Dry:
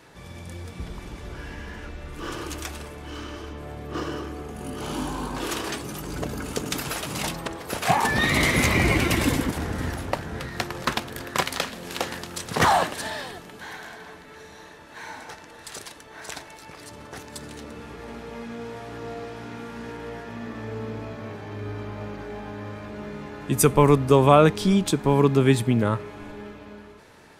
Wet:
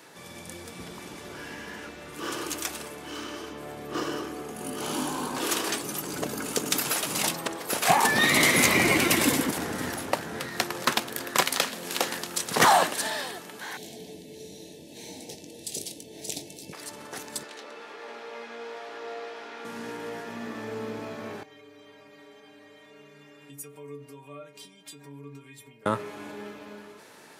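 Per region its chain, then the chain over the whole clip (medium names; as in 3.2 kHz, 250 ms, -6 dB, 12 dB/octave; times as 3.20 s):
13.77–16.73 s: Butterworth band-stop 1.3 kHz, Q 0.54 + bass shelf 280 Hz +12 dB + doubling 21 ms -11 dB
17.43–19.65 s: three-band isolator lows -23 dB, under 370 Hz, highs -17 dB, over 5.5 kHz + doubling 22 ms -13 dB
21.43–25.86 s: peaking EQ 2.3 kHz +7.5 dB 0.59 oct + compression 16:1, threshold -29 dBFS + inharmonic resonator 140 Hz, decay 0.43 s, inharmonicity 0.008
whole clip: high-pass 200 Hz 12 dB/octave; treble shelf 5.7 kHz +8.5 dB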